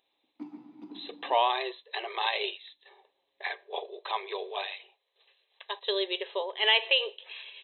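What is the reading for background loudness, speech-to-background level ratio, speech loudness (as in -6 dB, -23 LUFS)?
-48.0 LUFS, 18.5 dB, -29.5 LUFS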